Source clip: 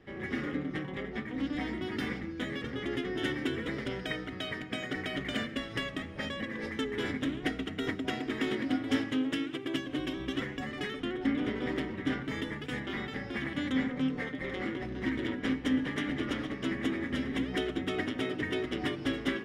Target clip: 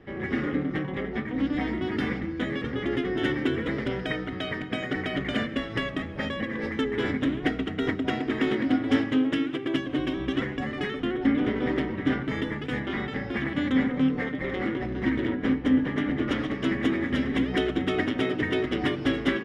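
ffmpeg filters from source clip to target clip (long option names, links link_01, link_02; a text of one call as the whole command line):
ffmpeg -i in.wav -filter_complex "[0:a]asetnsamples=nb_out_samples=441:pad=0,asendcmd='15.25 lowpass f 1300;16.28 lowpass f 3600',lowpass=frequency=2300:poles=1,asplit=2[link_01][link_02];[link_02]adelay=233.2,volume=-20dB,highshelf=frequency=4000:gain=-5.25[link_03];[link_01][link_03]amix=inputs=2:normalize=0,volume=7dB" out.wav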